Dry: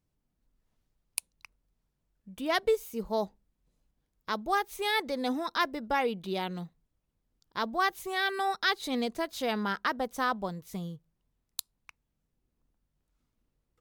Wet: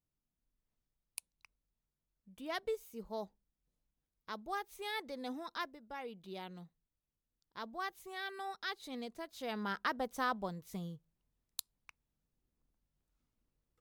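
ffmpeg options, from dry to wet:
-af "volume=3dB,afade=t=out:st=5.59:d=0.2:silence=0.375837,afade=t=in:st=5.79:d=0.58:silence=0.446684,afade=t=in:st=9.34:d=0.47:silence=0.421697"

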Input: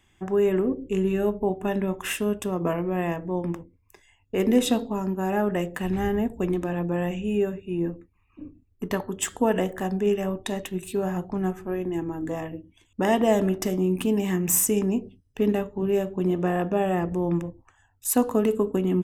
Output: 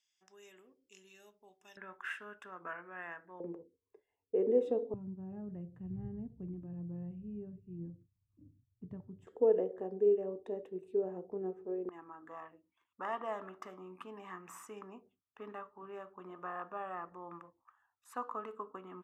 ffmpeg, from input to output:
-af "asetnsamples=n=441:p=0,asendcmd='1.77 bandpass f 1500;3.4 bandpass f 450;4.94 bandpass f 120;9.27 bandpass f 450;11.89 bandpass f 1200',bandpass=f=5.2k:t=q:w=6:csg=0"

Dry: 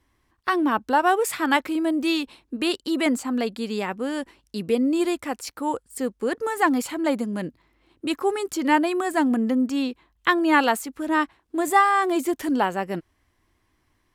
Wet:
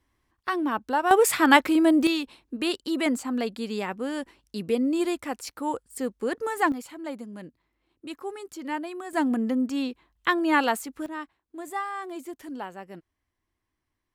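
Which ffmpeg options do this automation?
-af "asetnsamples=n=441:p=0,asendcmd='1.11 volume volume 4dB;2.07 volume volume -3dB;6.72 volume volume -12dB;9.13 volume volume -3.5dB;11.06 volume volume -14dB',volume=-5dB"

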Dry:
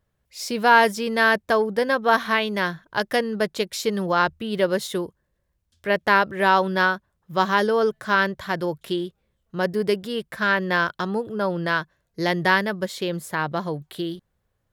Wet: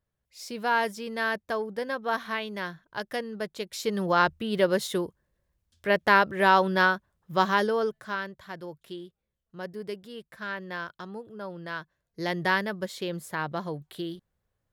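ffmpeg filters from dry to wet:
-af "volume=6dB,afade=t=in:st=3.6:d=0.53:silence=0.398107,afade=t=out:st=7.34:d=0.88:silence=0.251189,afade=t=in:st=11.64:d=0.81:silence=0.398107"

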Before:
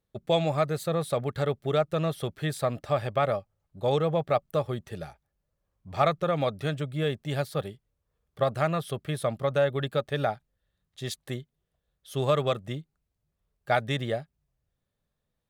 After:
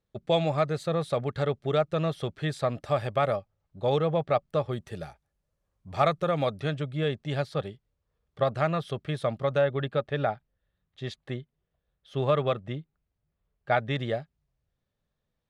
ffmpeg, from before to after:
-af "asetnsamples=n=441:p=0,asendcmd='2.8 lowpass f 11000;3.36 lowpass f 5400;4.72 lowpass f 11000;6.6 lowpass f 5500;9.61 lowpass f 3200;13.96 lowpass f 5500',lowpass=6.3k"

